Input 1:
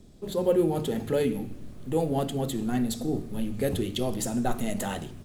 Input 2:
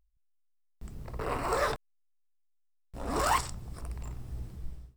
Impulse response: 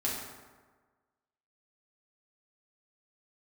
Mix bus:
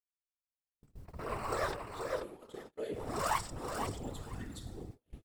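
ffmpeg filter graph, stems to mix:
-filter_complex "[0:a]lowpass=10k,lowshelf=f=360:g=-12,aecho=1:1:7.3:0.97,adelay=1650,volume=-15dB,asplit=2[a][b];[b]volume=-6dB[c];[1:a]volume=0dB,asplit=2[d][e];[e]volume=-6dB[f];[2:a]atrim=start_sample=2205[g];[c][g]afir=irnorm=-1:irlink=0[h];[f]aecho=0:1:484|968|1452:1|0.17|0.0289[i];[a][d][h][i]amix=inputs=4:normalize=0,equalizer=f=140:t=o:w=0.29:g=-14,afftfilt=real='hypot(re,im)*cos(2*PI*random(0))':imag='hypot(re,im)*sin(2*PI*random(1))':win_size=512:overlap=0.75,agate=range=-38dB:threshold=-47dB:ratio=16:detection=peak"

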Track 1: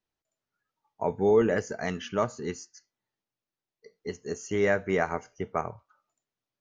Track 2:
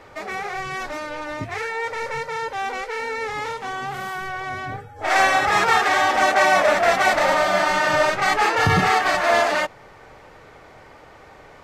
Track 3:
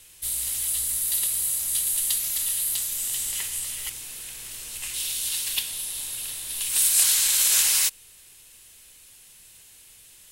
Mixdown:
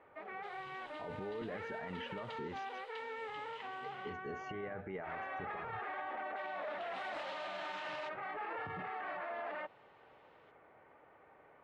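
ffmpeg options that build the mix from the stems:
-filter_complex "[0:a]acompressor=threshold=-30dB:ratio=6,alimiter=level_in=9dB:limit=-24dB:level=0:latency=1,volume=-9dB,volume=1dB[a];[1:a]lowpass=f=1.6k:p=1,alimiter=limit=-18dB:level=0:latency=1:release=19,highpass=f=300:p=1,volume=-14dB[b];[2:a]highpass=f=860:t=q:w=4.9,adelay=200,volume=-14.5dB,asplit=3[c][d][e];[c]atrim=end=4.13,asetpts=PTS-STARTPTS,afade=t=out:st=4.126:d=0.004:c=hsin[f];[d]atrim=start=4.13:end=6.36,asetpts=PTS-STARTPTS,volume=0[g];[e]atrim=start=6.36,asetpts=PTS-STARTPTS,afade=t=in:d=0.004:c=hsin[h];[f][g][h]concat=n=3:v=0:a=1[i];[a][b][i]amix=inputs=3:normalize=0,lowpass=f=3k:w=0.5412,lowpass=f=3k:w=1.3066,alimiter=level_in=10dB:limit=-24dB:level=0:latency=1:release=53,volume=-10dB"

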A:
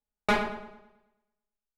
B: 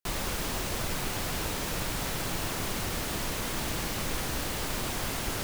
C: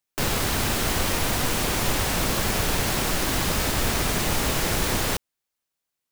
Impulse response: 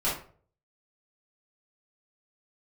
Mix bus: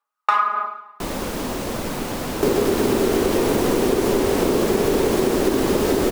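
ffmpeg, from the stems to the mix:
-filter_complex "[0:a]aphaser=in_gain=1:out_gain=1:delay=1.1:decay=0.47:speed=1.7:type=sinusoidal,highpass=f=1.2k:t=q:w=6.5,volume=0.5dB,asplit=2[a][b];[b]volume=-10dB[c];[1:a]adelay=950,volume=1dB[d];[2:a]equalizer=f=390:t=o:w=0.54:g=13.5,adelay=2250,volume=-0.5dB[e];[3:a]atrim=start_sample=2205[f];[c][f]afir=irnorm=-1:irlink=0[g];[a][d][e][g]amix=inputs=4:normalize=0,equalizer=f=250:t=o:w=1:g=11,equalizer=f=500:t=o:w=1:g=7,equalizer=f=1k:t=o:w=1:g=4,acompressor=threshold=-15dB:ratio=6"

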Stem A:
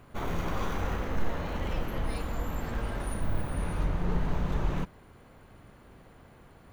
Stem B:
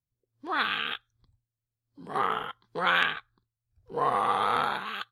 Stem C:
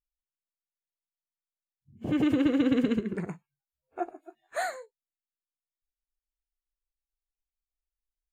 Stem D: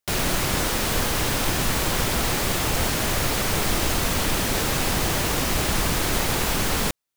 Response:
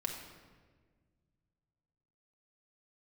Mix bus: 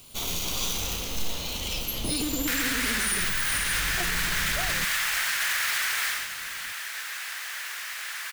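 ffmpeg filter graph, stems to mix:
-filter_complex "[0:a]aexciter=amount=14.6:drive=5.3:freq=2.7k,volume=-5.5dB,asplit=2[a][b];[b]volume=-15dB[c];[2:a]acompressor=threshold=-29dB:ratio=6,volume=0dB[d];[3:a]highpass=f=1.7k:t=q:w=2.7,adelay=2400,volume=-1.5dB,afade=t=out:st=5.97:d=0.31:silence=0.316228[e];[4:a]atrim=start_sample=2205[f];[c][f]afir=irnorm=-1:irlink=0[g];[a][d][e][g]amix=inputs=4:normalize=0,alimiter=limit=-17dB:level=0:latency=1:release=32"

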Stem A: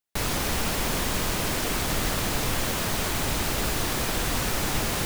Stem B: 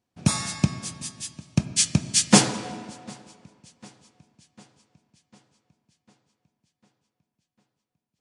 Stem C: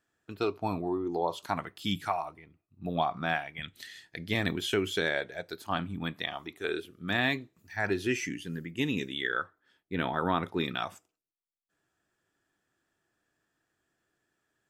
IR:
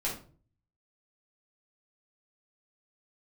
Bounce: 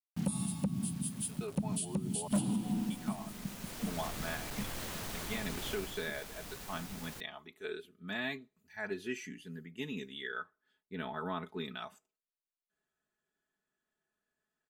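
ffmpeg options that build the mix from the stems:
-filter_complex "[0:a]asoftclip=type=hard:threshold=-21dB,adelay=2150,volume=-14dB,afade=t=in:st=3.58:d=0.47:silence=0.354813,afade=t=out:st=5.71:d=0.36:silence=0.375837[a];[1:a]firequalizer=gain_entry='entry(120,0);entry(190,11);entry(490,-15);entry(800,-6);entry(1900,-27);entry(2900,-5);entry(5900,-21);entry(9900,6)':delay=0.05:min_phase=1,asoftclip=type=hard:threshold=-11dB,volume=2.5dB[b];[2:a]bandreject=f=5.4k:w=9.4,aecho=1:1:4.7:0.8,adelay=1000,volume=-11.5dB,asplit=3[c][d][e];[c]atrim=end=2.28,asetpts=PTS-STARTPTS,afade=t=out:st=2.276:d=0.004:c=hsin[f];[d]atrim=start=2.28:end=2.9,asetpts=PTS-STARTPTS,volume=0[g];[e]atrim=start=2.9,asetpts=PTS-STARTPTS,afade=t=in:d=0.004:c=hsin[h];[f][g][h]concat=n=3:v=0:a=1[i];[a][b]amix=inputs=2:normalize=0,acrusher=bits=7:mix=0:aa=0.000001,alimiter=limit=-20dB:level=0:latency=1:release=227,volume=0dB[j];[i][j]amix=inputs=2:normalize=0,alimiter=level_in=1.5dB:limit=-24dB:level=0:latency=1:release=395,volume=-1.5dB"

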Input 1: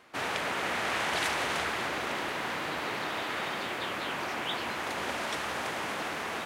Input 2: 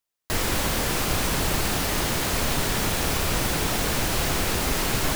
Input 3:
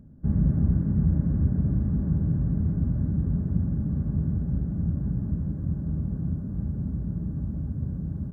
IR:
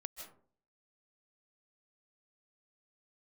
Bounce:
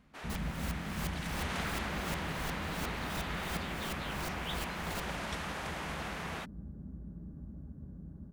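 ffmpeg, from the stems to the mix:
-filter_complex "[0:a]volume=-6dB,afade=t=in:st=1.24:d=0.34:silence=0.421697[a];[1:a]alimiter=limit=-23.5dB:level=0:latency=1,aeval=exprs='val(0)*pow(10,-29*if(lt(mod(-2.8*n/s,1),2*abs(-2.8)/1000),1-mod(-2.8*n/s,1)/(2*abs(-2.8)/1000),(mod(-2.8*n/s,1)-2*abs(-2.8)/1000)/(1-2*abs(-2.8)/1000))/20)':c=same,volume=-5dB[b];[2:a]volume=-12dB[c];[a][b][c]amix=inputs=3:normalize=0,equalizer=f=110:t=o:w=0.7:g=-13.5"

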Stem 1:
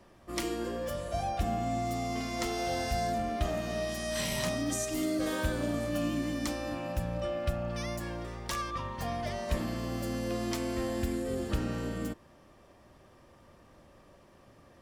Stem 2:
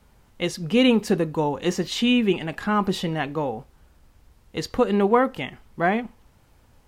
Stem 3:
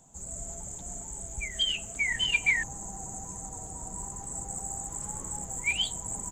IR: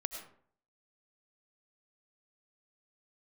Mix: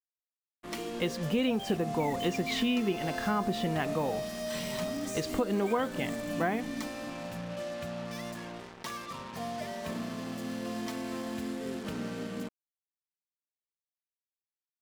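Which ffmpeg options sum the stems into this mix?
-filter_complex "[0:a]highpass=f=110:w=0.5412,highpass=f=110:w=1.3066,aecho=1:1:4.6:0.47,adelay=350,volume=-3dB[a];[1:a]adelay=600,volume=-3.5dB[b];[2:a]acrusher=bits=4:mix=0:aa=0.000001,agate=range=-33dB:threshold=-39dB:ratio=3:detection=peak,volume=-12.5dB[c];[a][b][c]amix=inputs=3:normalize=0,highshelf=f=6.8k:g=-9.5,acrusher=bits=6:mix=0:aa=0.5,acompressor=threshold=-26dB:ratio=4"

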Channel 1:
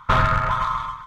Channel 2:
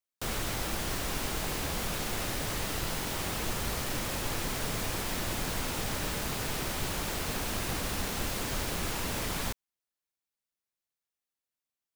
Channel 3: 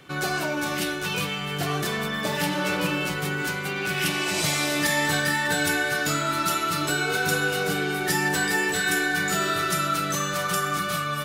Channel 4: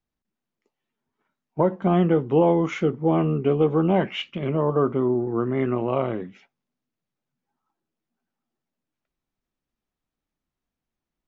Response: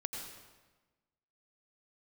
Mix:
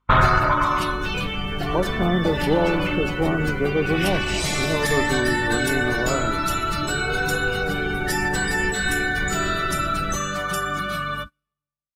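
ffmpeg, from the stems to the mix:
-filter_complex "[0:a]asoftclip=type=hard:threshold=-8dB,volume=-1dB,asplit=2[a][b];[b]volume=-7dB[c];[1:a]bass=f=250:g=13,treble=f=4k:g=7,acrossover=split=3500[d][e];[e]acompressor=threshold=-31dB:ratio=4:attack=1:release=60[f];[d][f]amix=inputs=2:normalize=0,acrusher=samples=12:mix=1:aa=0.000001,adelay=650,volume=-9dB,asplit=2[g][h];[h]volume=-9dB[i];[2:a]highpass=f=140:w=0.5412,highpass=f=140:w=1.3066,aeval=exprs='val(0)+0.0112*(sin(2*PI*50*n/s)+sin(2*PI*2*50*n/s)/2+sin(2*PI*3*50*n/s)/3+sin(2*PI*4*50*n/s)/4+sin(2*PI*5*50*n/s)/5)':c=same,asoftclip=type=tanh:threshold=-12.5dB,volume=-1dB,asplit=2[j][k];[k]volume=-9dB[l];[3:a]adelay=150,volume=-2.5dB[m];[4:a]atrim=start_sample=2205[n];[c][i][l]amix=inputs=3:normalize=0[o];[o][n]afir=irnorm=-1:irlink=0[p];[a][g][j][m][p]amix=inputs=5:normalize=0,agate=range=-20dB:threshold=-32dB:ratio=16:detection=peak,afftdn=nr=15:nf=-32"

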